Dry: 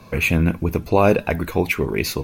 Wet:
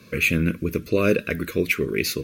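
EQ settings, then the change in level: HPF 200 Hz 6 dB/oct; Butterworth band-stop 820 Hz, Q 1; 0.0 dB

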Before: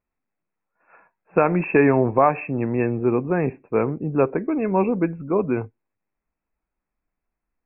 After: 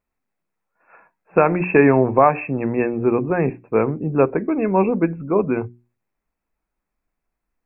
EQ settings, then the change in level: notches 60/120/180/240/300/360 Hz; +3.0 dB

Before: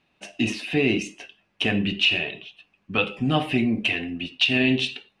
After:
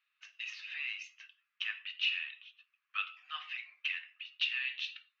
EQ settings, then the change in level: Chebyshev band-pass 1200–6500 Hz, order 4; air absorption 75 m; high shelf 3900 Hz -5 dB; -8.0 dB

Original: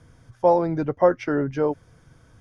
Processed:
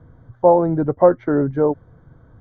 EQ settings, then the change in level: running mean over 17 samples; air absorption 160 m; +6.0 dB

